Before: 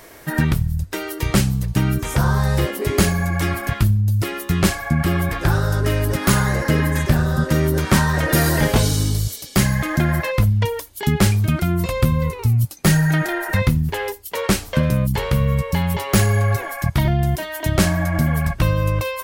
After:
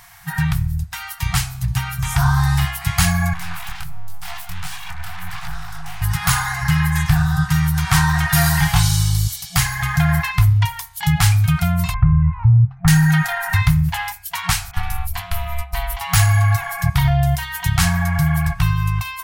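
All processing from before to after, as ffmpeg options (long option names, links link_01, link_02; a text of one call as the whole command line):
ffmpeg -i in.wav -filter_complex "[0:a]asettb=1/sr,asplit=3[link_01][link_02][link_03];[link_01]atrim=end=3.334[link_04];[link_02]atrim=start=3.33:end=6.02,asetpts=PTS-STARTPTS,afade=type=in:duration=0.004:curve=qsin,afade=type=out:start_time=2.686:duration=0.004:curve=qsin,acompressor=threshold=-20dB:ratio=6:attack=3.2:release=140:knee=1:detection=peak,flanger=delay=19:depth=7.7:speed=1.4,aeval=exprs='abs(val(0))':channel_layout=same[link_05];[link_03]atrim=start=6.016[link_06];[link_04][link_05]acrossfade=duration=0.004:curve1=hsin:curve2=qsin[link_07];[link_07][link_06]acrossfade=duration=0.004:curve1=qsin:curve2=hsin,asettb=1/sr,asplit=3[link_08][link_09][link_10];[link_08]atrim=end=11.944[link_11];[link_09]atrim=start=11.94:end=12.88,asetpts=PTS-STARTPTS,afade=type=in:duration=0.004:curve=qsin,afade=type=out:start_time=0.936:duration=0.004:curve=qsin,lowpass=frequency=1700:width=0.5412,lowpass=frequency=1700:width=1.3066,lowshelf=frequency=220:gain=11,acompressor=threshold=-23dB:ratio=1.5:attack=3.2:release=140:knee=1:detection=peak[link_12];[link_10]atrim=start=12.876[link_13];[link_11][link_12]acrossfade=duration=0.004:curve1=hsin:curve2=qsin[link_14];[link_14][link_13]acrossfade=duration=0.004:curve1=qsin:curve2=hsin,asettb=1/sr,asplit=3[link_15][link_16][link_17];[link_15]atrim=end=14.714[link_18];[link_16]atrim=start=14.71:end=16.01,asetpts=PTS-STARTPTS,afade=type=in:duration=0.004:curve=qsin,afade=type=out:start_time=1.296:duration=0.004:curve=qsin,agate=range=-33dB:threshold=-19dB:ratio=3:release=100:detection=peak,equalizer=frequency=12000:width_type=o:width=0.46:gain=7,aeval=exprs='val(0)*sin(2*PI*140*n/s)':channel_layout=same[link_19];[link_17]atrim=start=16.006[link_20];[link_18][link_19]acrossfade=duration=0.004:curve1=hsin:curve2=qsin[link_21];[link_21][link_20]acrossfade=duration=0.004:curve1=qsin:curve2=hsin,afftfilt=real='re*(1-between(b*sr/4096,180,680))':imag='im*(1-between(b*sr/4096,180,680))':win_size=4096:overlap=0.75,bandreject=frequency=65.71:width_type=h:width=4,bandreject=frequency=131.42:width_type=h:width=4,bandreject=frequency=197.13:width_type=h:width=4,bandreject=frequency=262.84:width_type=h:width=4,bandreject=frequency=328.55:width_type=h:width=4,bandreject=frequency=394.26:width_type=h:width=4,bandreject=frequency=459.97:width_type=h:width=4,bandreject=frequency=525.68:width_type=h:width=4,bandreject=frequency=591.39:width_type=h:width=4,bandreject=frequency=657.1:width_type=h:width=4,bandreject=frequency=722.81:width_type=h:width=4,bandreject=frequency=788.52:width_type=h:width=4,bandreject=frequency=854.23:width_type=h:width=4,bandreject=frequency=919.94:width_type=h:width=4,bandreject=frequency=985.65:width_type=h:width=4,bandreject=frequency=1051.36:width_type=h:width=4,bandreject=frequency=1117.07:width_type=h:width=4,bandreject=frequency=1182.78:width_type=h:width=4,bandreject=frequency=1248.49:width_type=h:width=4,bandreject=frequency=1314.2:width_type=h:width=4,bandreject=frequency=1379.91:width_type=h:width=4,bandreject=frequency=1445.62:width_type=h:width=4,bandreject=frequency=1511.33:width_type=h:width=4,bandreject=frequency=1577.04:width_type=h:width=4,bandreject=frequency=1642.75:width_type=h:width=4,bandreject=frequency=1708.46:width_type=h:width=4,bandreject=frequency=1774.17:width_type=h:width=4,bandreject=frequency=1839.88:width_type=h:width=4,bandreject=frequency=1905.59:width_type=h:width=4,bandreject=frequency=1971.3:width_type=h:width=4,bandreject=frequency=2037.01:width_type=h:width=4,bandreject=frequency=2102.72:width_type=h:width=4,bandreject=frequency=2168.43:width_type=h:width=4,bandreject=frequency=2234.14:width_type=h:width=4,bandreject=frequency=2299.85:width_type=h:width=4,bandreject=frequency=2365.56:width_type=h:width=4,bandreject=frequency=2431.27:width_type=h:width=4,bandreject=frequency=2496.98:width_type=h:width=4,bandreject=frequency=2562.69:width_type=h:width=4,dynaudnorm=framelen=480:gausssize=7:maxgain=5.5dB" out.wav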